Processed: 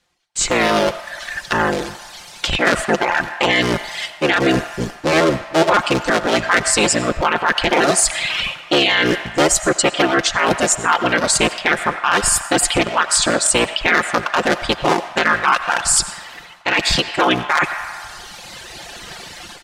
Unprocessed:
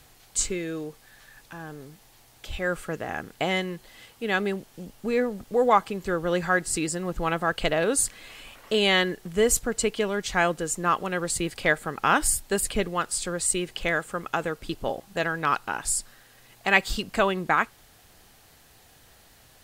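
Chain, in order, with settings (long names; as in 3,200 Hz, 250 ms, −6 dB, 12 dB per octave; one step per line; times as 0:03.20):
sub-harmonics by changed cycles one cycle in 3, inverted
reversed playback
downward compressor 5 to 1, threshold −34 dBFS, peak gain reduction 18 dB
reversed playback
far-end echo of a speakerphone 90 ms, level −12 dB
automatic gain control gain up to 16 dB
noise gate with hold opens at −34 dBFS
high-frequency loss of the air 92 metres
reverb reduction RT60 1.8 s
spectral tilt +2 dB per octave
comb filter 5.7 ms, depth 36%
on a send at −12.5 dB: Chebyshev high-pass filter 610 Hz, order 6 + convolution reverb RT60 2.1 s, pre-delay 50 ms
on the sum: boost into a limiter +13 dB
level −3.5 dB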